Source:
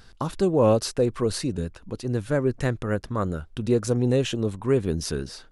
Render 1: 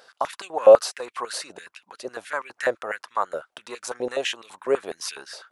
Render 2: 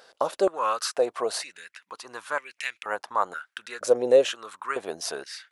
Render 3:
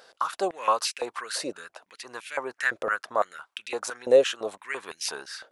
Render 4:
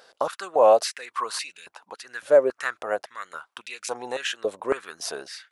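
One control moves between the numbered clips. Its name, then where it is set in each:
high-pass on a step sequencer, speed: 12, 2.1, 5.9, 3.6 Hertz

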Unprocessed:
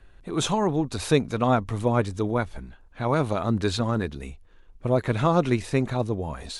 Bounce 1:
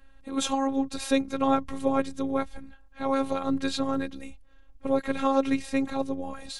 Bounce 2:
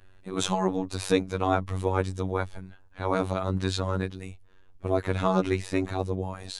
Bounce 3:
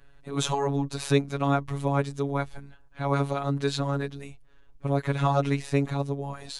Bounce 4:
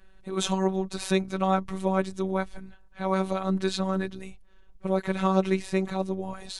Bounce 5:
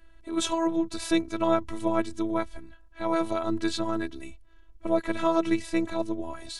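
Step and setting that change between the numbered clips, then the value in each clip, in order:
phases set to zero, frequency: 270, 94, 140, 190, 330 Hertz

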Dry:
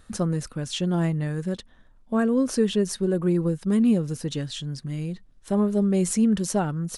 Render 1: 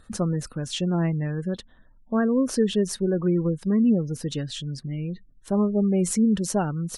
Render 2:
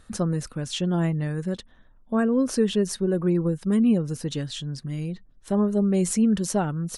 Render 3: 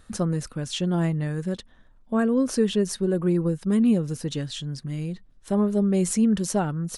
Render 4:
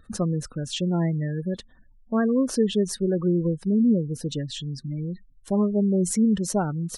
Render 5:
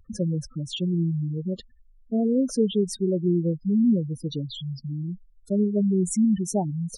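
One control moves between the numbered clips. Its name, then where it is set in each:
gate on every frequency bin, under each frame's peak: −35, −50, −60, −25, −10 decibels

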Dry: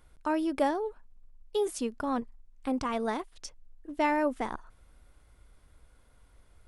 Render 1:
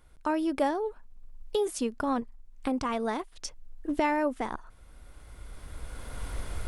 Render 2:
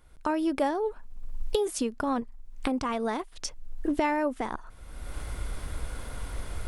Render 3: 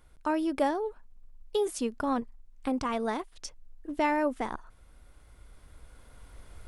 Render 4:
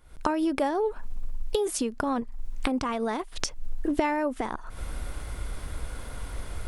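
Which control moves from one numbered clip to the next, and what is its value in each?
camcorder AGC, rising by: 13, 33, 5.1, 82 dB per second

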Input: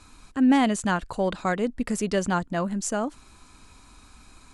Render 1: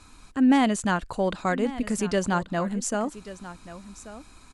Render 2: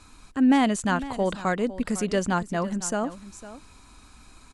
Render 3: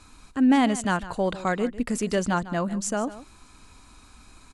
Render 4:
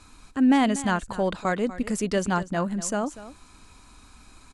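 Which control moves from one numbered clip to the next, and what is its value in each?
single-tap delay, delay time: 1,135, 504, 150, 242 milliseconds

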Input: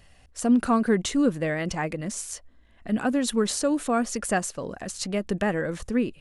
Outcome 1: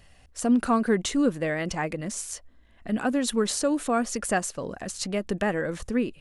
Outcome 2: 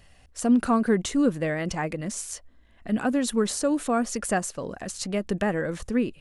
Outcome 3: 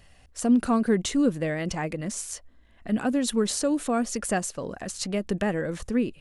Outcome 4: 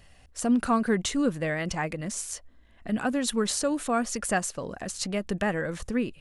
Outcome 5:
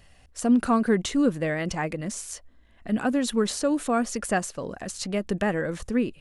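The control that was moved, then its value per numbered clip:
dynamic equaliser, frequency: 110, 3,400, 1,300, 330, 8,600 Hertz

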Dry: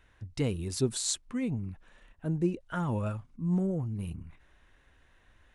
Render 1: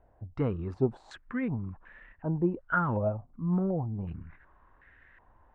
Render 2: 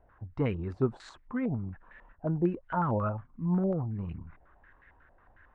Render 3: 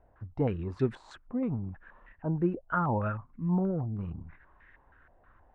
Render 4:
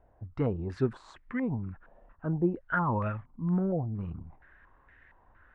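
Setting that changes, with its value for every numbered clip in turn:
low-pass on a step sequencer, speed: 2.7, 11, 6.3, 4.3 Hertz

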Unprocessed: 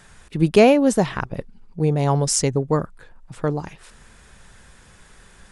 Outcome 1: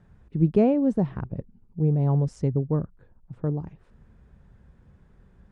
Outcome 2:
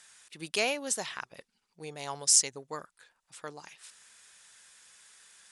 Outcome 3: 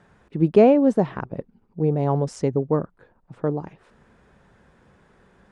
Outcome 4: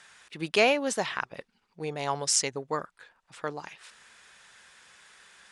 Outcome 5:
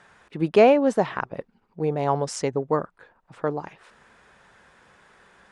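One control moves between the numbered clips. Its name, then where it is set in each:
resonant band-pass, frequency: 100, 7,800, 340, 3,100, 880 Hertz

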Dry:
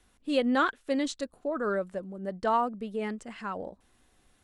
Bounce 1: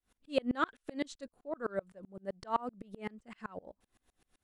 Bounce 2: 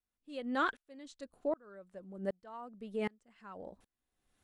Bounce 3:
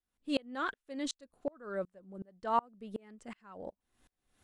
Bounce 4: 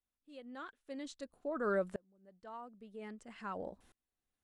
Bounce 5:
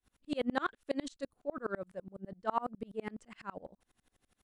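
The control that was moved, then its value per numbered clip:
tremolo with a ramp in dB, speed: 7.8, 1.3, 2.7, 0.51, 12 Hertz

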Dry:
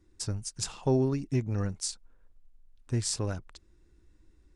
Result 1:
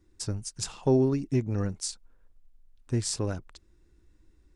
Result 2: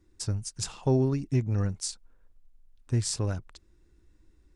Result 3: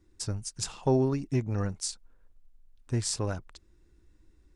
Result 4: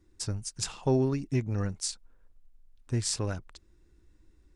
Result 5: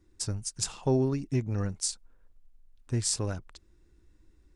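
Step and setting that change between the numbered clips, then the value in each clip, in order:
dynamic equaliser, frequency: 330, 100, 890, 2,200, 8,900 Hertz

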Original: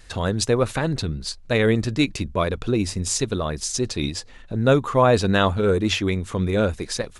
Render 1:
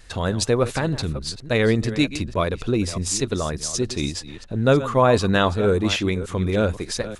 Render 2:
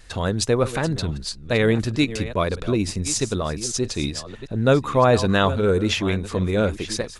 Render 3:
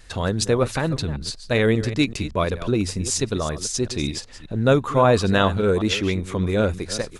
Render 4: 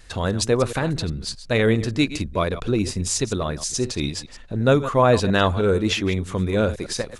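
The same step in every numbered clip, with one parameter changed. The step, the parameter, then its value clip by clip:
delay that plays each chunk backwards, delay time: 298, 639, 194, 104 milliseconds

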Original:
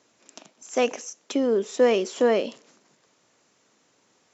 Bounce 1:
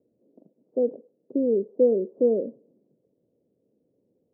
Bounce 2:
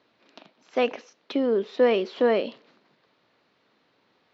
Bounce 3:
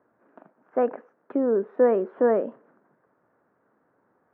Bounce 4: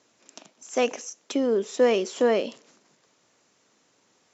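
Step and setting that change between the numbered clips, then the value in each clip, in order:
Chebyshev low-pass filter, frequency: 520, 4,300, 1,600, 11,000 Hertz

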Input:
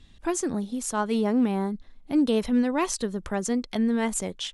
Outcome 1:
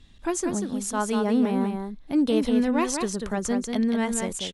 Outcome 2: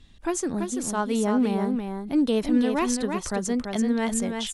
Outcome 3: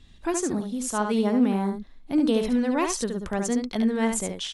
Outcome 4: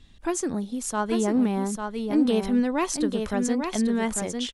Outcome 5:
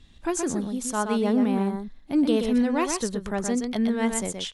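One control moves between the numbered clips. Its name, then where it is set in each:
single-tap delay, delay time: 190, 336, 71, 847, 123 milliseconds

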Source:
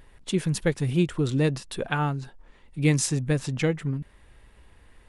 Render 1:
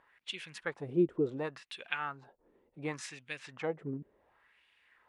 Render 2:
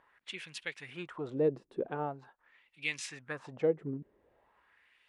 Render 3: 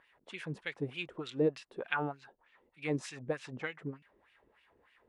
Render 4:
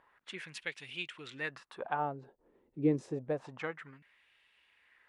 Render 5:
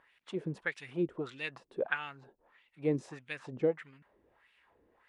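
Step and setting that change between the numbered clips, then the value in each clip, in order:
LFO wah, speed: 0.69, 0.44, 3.3, 0.28, 1.6 Hertz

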